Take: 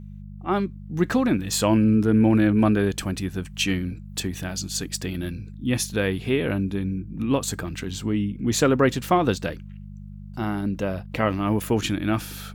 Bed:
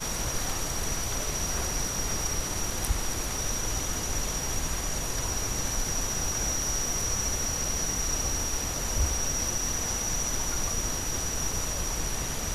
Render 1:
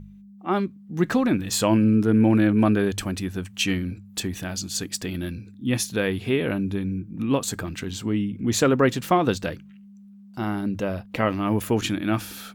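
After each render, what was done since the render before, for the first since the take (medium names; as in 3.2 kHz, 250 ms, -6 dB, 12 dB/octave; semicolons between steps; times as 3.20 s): de-hum 50 Hz, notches 3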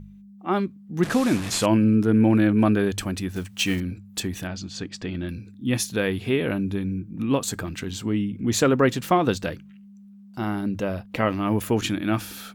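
1.03–1.66 s: one-bit delta coder 64 kbps, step -26.5 dBFS; 3.29–3.81 s: block-companded coder 5-bit; 4.47–5.29 s: distance through air 150 m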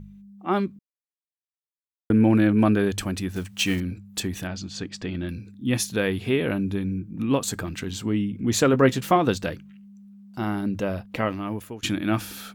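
0.79–2.10 s: mute; 8.72–9.16 s: doubling 15 ms -9.5 dB; 11.02–11.83 s: fade out, to -23 dB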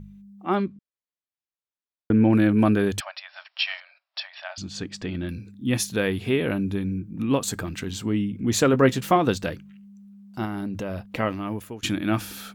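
0.55–2.33 s: distance through air 95 m; 3.00–4.58 s: brick-wall FIR band-pass 560–5600 Hz; 10.45–11.07 s: compression, threshold -26 dBFS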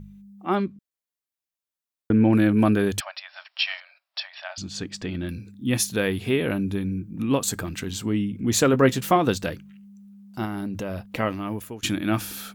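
treble shelf 7.2 kHz +6 dB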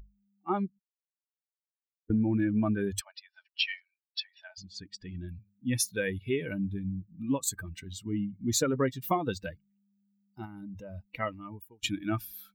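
expander on every frequency bin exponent 2; compression, threshold -24 dBFS, peak gain reduction 10 dB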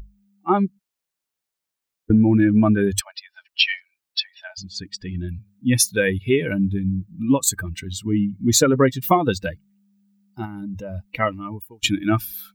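trim +11.5 dB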